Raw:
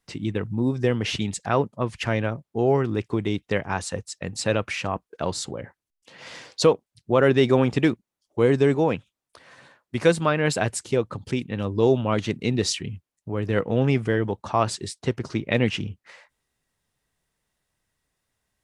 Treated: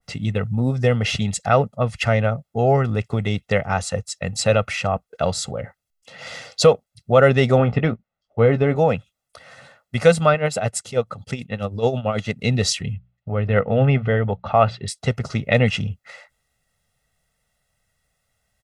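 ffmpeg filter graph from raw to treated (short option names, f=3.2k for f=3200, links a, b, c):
-filter_complex "[0:a]asettb=1/sr,asplit=3[a][b][c];[a]atrim=end=7.584[d];[b]atrim=start=7.58:end=8.76,asetpts=PTS-STARTPTS,afade=t=in:d=0.004:c=qsin,afade=t=out:st=1.176:d=0.004:c=qsin,lowpass=2.5k,asplit=2[e][f];[f]adelay=18,volume=-11dB[g];[e][g]amix=inputs=2:normalize=0,atrim=end_sample=52038[h];[c]atrim=start=8.756[i];[d][h]acrossfade=d=0.004:c1=hsin:c2=qsin[j];[j][i]acrossfade=d=0.004:c1=qsin:c2=hsin,asettb=1/sr,asplit=3[k][l][m];[k]atrim=end=10.344[n];[l]atrim=start=10.34:end=12.43,asetpts=PTS-STARTPTS,afade=t=in:d=0.004:c=qsin,afade=t=out:st=2.086:d=0.004:c=qsin,lowshelf=f=77:g=-10.5,tremolo=f=9.2:d=0.72[o];[m]atrim=start=12.426[p];[n][o]acrossfade=d=0.004:c1=hsin:c2=qsin[q];[q][p]acrossfade=d=0.004:c1=qsin:c2=hsin,asettb=1/sr,asplit=3[r][s][t];[r]atrim=end=12.944[u];[s]atrim=start=12.94:end=14.88,asetpts=PTS-STARTPTS,afade=t=in:d=0.004:c=qsin,afade=t=out:st=1.936:d=0.004:c=qsin,lowpass=f=3.4k:w=0.5412,lowpass=f=3.4k:w=1.3066,bandreject=f=60:t=h:w=6,bandreject=f=120:t=h:w=6,bandreject=f=180:t=h:w=6[v];[t]atrim=start=14.876[w];[u][v]acrossfade=d=0.004:c1=hsin:c2=qsin[x];[x][w]acrossfade=d=0.004:c1=qsin:c2=hsin,aecho=1:1:1.5:0.77,adynamicequalizer=threshold=0.02:dfrequency=1600:dqfactor=0.7:tfrequency=1600:tqfactor=0.7:attack=5:release=100:ratio=0.375:range=2:mode=cutabove:tftype=highshelf,volume=3.5dB"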